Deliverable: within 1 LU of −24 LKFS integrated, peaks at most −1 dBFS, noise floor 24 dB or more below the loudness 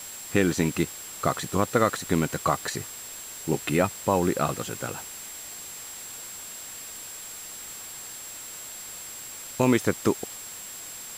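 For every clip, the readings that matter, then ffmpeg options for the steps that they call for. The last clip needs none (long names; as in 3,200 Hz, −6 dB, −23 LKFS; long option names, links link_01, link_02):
interfering tone 7,600 Hz; level of the tone −40 dBFS; background noise floor −40 dBFS; target noise floor −53 dBFS; integrated loudness −29.0 LKFS; sample peak −7.5 dBFS; target loudness −24.0 LKFS
→ -af "bandreject=frequency=7600:width=30"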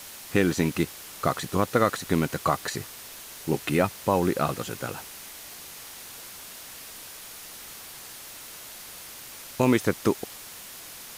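interfering tone none found; background noise floor −43 dBFS; target noise floor −51 dBFS
→ -af "afftdn=noise_reduction=8:noise_floor=-43"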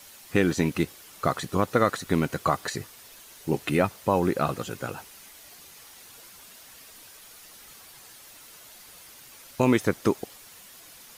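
background noise floor −49 dBFS; target noise floor −51 dBFS
→ -af "afftdn=noise_reduction=6:noise_floor=-49"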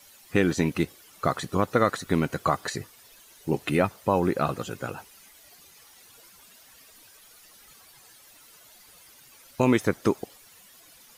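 background noise floor −54 dBFS; integrated loudness −26.5 LKFS; sample peak −8.0 dBFS; target loudness −24.0 LKFS
→ -af "volume=2.5dB"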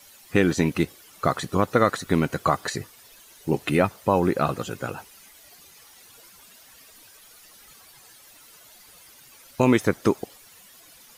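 integrated loudness −24.0 LKFS; sample peak −5.5 dBFS; background noise floor −51 dBFS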